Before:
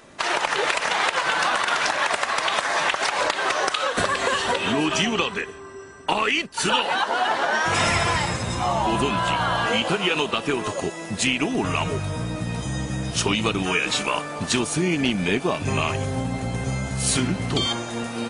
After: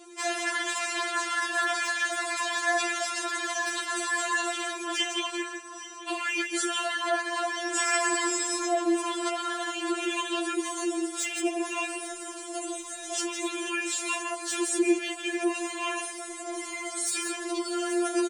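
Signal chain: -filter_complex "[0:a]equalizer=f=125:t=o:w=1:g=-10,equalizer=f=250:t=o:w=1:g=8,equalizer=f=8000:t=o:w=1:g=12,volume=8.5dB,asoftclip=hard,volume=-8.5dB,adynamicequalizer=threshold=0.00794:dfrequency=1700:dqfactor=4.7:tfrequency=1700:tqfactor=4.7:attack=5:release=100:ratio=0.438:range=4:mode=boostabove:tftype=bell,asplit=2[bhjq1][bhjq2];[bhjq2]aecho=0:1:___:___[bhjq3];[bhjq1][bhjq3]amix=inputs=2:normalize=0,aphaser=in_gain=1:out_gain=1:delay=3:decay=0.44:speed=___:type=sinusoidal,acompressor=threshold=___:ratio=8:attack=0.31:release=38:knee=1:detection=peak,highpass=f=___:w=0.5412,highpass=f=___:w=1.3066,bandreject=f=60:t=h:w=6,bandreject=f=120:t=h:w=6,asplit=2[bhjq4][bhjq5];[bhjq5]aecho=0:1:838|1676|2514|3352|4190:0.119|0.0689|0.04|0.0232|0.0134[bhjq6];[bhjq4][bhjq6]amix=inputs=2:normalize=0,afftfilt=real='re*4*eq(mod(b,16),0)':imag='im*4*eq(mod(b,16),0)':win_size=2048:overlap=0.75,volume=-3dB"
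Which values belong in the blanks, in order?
157, 0.251, 0.91, -19dB, 58, 58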